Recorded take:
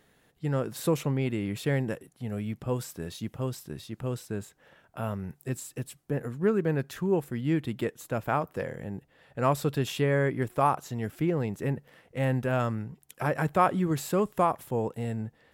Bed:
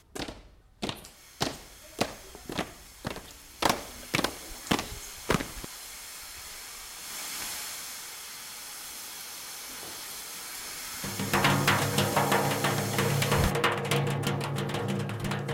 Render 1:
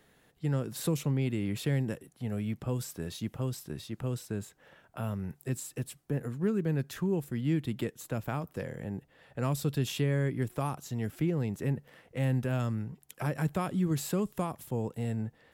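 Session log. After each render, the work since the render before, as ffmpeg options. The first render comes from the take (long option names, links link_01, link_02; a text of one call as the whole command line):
ffmpeg -i in.wav -filter_complex "[0:a]acrossover=split=290|3000[link_01][link_02][link_03];[link_02]acompressor=threshold=-40dB:ratio=2.5[link_04];[link_01][link_04][link_03]amix=inputs=3:normalize=0" out.wav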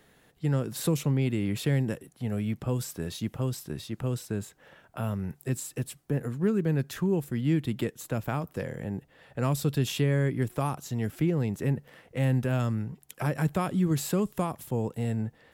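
ffmpeg -i in.wav -af "volume=3.5dB" out.wav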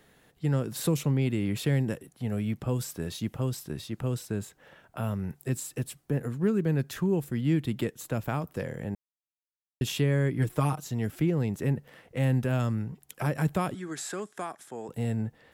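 ffmpeg -i in.wav -filter_complex "[0:a]asettb=1/sr,asplit=3[link_01][link_02][link_03];[link_01]atrim=end=10.384[link_04];[link_02]atrim=start=10.38:end=10.84,asetpts=PTS-STARTPTS,afade=type=in:duration=0.004:curve=qsin,afade=type=out:start_time=0.456:duration=0.004:curve=qsin,aecho=1:1:6.5:0.72,atrim=end_sample=20286[link_05];[link_03]atrim=start=10.836[link_06];[link_04][link_05]acrossfade=duration=0.004:curve1=hsin:curve2=qsin[link_07];[link_07][link_06]acrossfade=duration=0.004:curve1=qsin:curve2=hsin,asettb=1/sr,asplit=3[link_08][link_09][link_10];[link_08]atrim=end=13.744[link_11];[link_09]atrim=start=13.74:end=14.89,asetpts=PTS-STARTPTS,afade=type=in:duration=0.004:curve=qsin,afade=type=out:start_time=1.146:duration=0.004:curve=qsin,highpass=460,equalizer=frequency=520:width_type=q:width=4:gain=-8,equalizer=frequency=980:width_type=q:width=4:gain=-6,equalizer=frequency=1600:width_type=q:width=4:gain=7,equalizer=frequency=2800:width_type=q:width=4:gain=-7,equalizer=frequency=4400:width_type=q:width=4:gain=-4,lowpass=frequency=9400:width=0.5412,lowpass=frequency=9400:width=1.3066[link_12];[link_10]atrim=start=14.886[link_13];[link_11][link_12]acrossfade=duration=0.004:curve1=hsin:curve2=qsin[link_14];[link_14][link_13]acrossfade=duration=0.004:curve1=qsin:curve2=hsin,asplit=3[link_15][link_16][link_17];[link_15]atrim=end=8.95,asetpts=PTS-STARTPTS,afade=type=out:start_time=8.946:duration=0.004:curve=hsin[link_18];[link_16]atrim=start=8.95:end=9.81,asetpts=PTS-STARTPTS,volume=0[link_19];[link_17]atrim=start=9.81,asetpts=PTS-STARTPTS,afade=type=in:duration=0.004:curve=hsin[link_20];[link_18][link_19][link_20]concat=n=3:v=0:a=1" out.wav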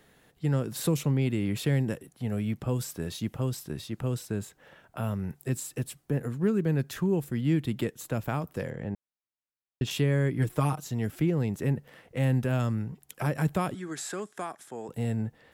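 ffmpeg -i in.wav -filter_complex "[0:a]asettb=1/sr,asplit=3[link_01][link_02][link_03];[link_01]atrim=end=8.704[link_04];[link_02]atrim=start=8.7:end=9.91,asetpts=PTS-STARTPTS,afade=type=in:duration=0.004:curve=qsin,afade=type=out:start_time=1.206:duration=0.004:curve=qsin,adynamicsmooth=sensitivity=5:basefreq=4200[link_05];[link_03]atrim=start=9.906[link_06];[link_04][link_05]acrossfade=duration=0.004:curve1=hsin:curve2=qsin[link_07];[link_07][link_06]acrossfade=duration=0.004:curve1=qsin:curve2=hsin" out.wav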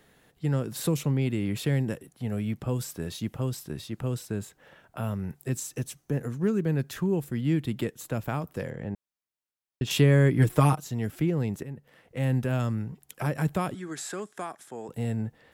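ffmpeg -i in.wav -filter_complex "[0:a]asettb=1/sr,asplit=3[link_01][link_02][link_03];[link_01]atrim=end=5.574[link_04];[link_02]atrim=start=5.57:end=6.6,asetpts=PTS-STARTPTS,afade=type=in:duration=0.004:curve=qsin,afade=type=out:start_time=1.026:duration=0.004:curve=qsin,equalizer=frequency=6100:width=5.3:gain=10.5[link_05];[link_03]atrim=start=6.596[link_06];[link_04][link_05]acrossfade=duration=0.004:curve1=hsin:curve2=qsin[link_07];[link_07][link_06]acrossfade=duration=0.004:curve1=qsin:curve2=hsin,asettb=1/sr,asplit=3[link_08][link_09][link_10];[link_08]atrim=end=9.904[link_11];[link_09]atrim=start=9.9:end=10.75,asetpts=PTS-STARTPTS,afade=type=in:duration=0.004:curve=qsin,afade=type=out:start_time=0.846:duration=0.004:curve=qsin,acontrast=48[link_12];[link_10]atrim=start=10.746[link_13];[link_11][link_12]acrossfade=duration=0.004:curve1=hsin:curve2=qsin[link_14];[link_14][link_13]acrossfade=duration=0.004:curve1=qsin:curve2=hsin,asplit=2[link_15][link_16];[link_15]atrim=end=11.63,asetpts=PTS-STARTPTS,afade=type=out:start_time=11.626:duration=0.004:curve=hsin:silence=0.16788[link_17];[link_16]atrim=start=11.63,asetpts=PTS-STARTPTS,afade=type=in:duration=0.72:silence=0.16788[link_18];[link_17][link_18]concat=n=2:v=0:a=1" out.wav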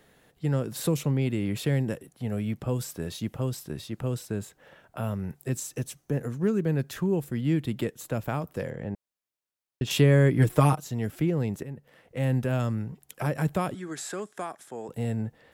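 ffmpeg -i in.wav -af "equalizer=frequency=560:width_type=o:width=0.74:gain=2.5" out.wav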